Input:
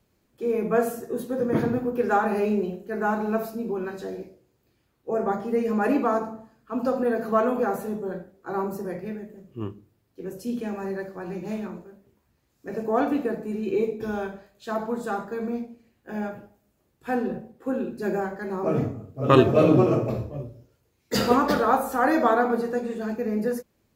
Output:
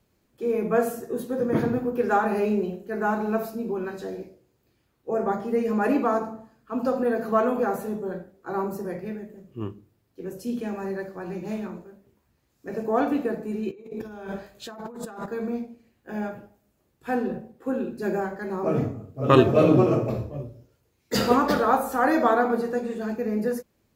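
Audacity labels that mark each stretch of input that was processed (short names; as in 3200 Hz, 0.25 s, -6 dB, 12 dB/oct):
13.710000	15.260000	negative-ratio compressor -38 dBFS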